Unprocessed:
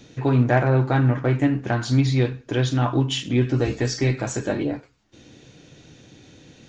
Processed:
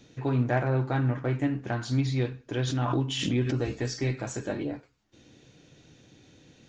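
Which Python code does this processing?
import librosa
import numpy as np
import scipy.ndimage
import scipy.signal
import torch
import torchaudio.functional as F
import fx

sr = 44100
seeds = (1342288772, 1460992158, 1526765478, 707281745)

y = fx.pre_swell(x, sr, db_per_s=38.0, at=(2.67, 3.59))
y = F.gain(torch.from_numpy(y), -7.5).numpy()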